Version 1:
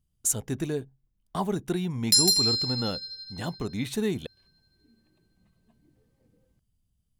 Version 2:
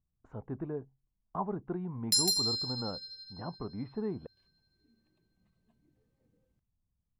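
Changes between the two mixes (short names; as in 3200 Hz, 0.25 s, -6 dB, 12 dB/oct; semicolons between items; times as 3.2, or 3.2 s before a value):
speech: add ladder low-pass 1300 Hz, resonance 40%; background -7.0 dB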